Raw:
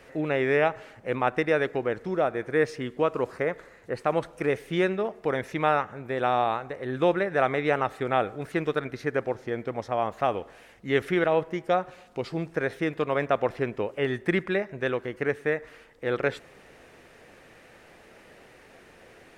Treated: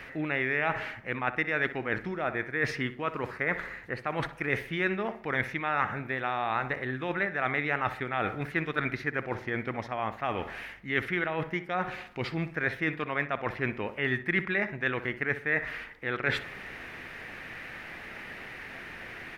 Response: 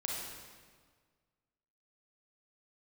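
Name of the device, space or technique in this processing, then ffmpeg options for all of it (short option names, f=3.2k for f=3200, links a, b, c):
compression on the reversed sound: -filter_complex "[0:a]areverse,acompressor=threshold=-34dB:ratio=6,areverse,equalizer=f=500:t=o:w=1:g=-8,equalizer=f=2k:t=o:w=1:g=8,equalizer=f=8k:t=o:w=1:g=-10,asplit=2[a][b];[b]adelay=62,lowpass=f=2.3k:p=1,volume=-12.5dB,asplit=2[c][d];[d]adelay=62,lowpass=f=2.3k:p=1,volume=0.38,asplit=2[e][f];[f]adelay=62,lowpass=f=2.3k:p=1,volume=0.38,asplit=2[g][h];[h]adelay=62,lowpass=f=2.3k:p=1,volume=0.38[i];[a][c][e][g][i]amix=inputs=5:normalize=0,volume=8dB"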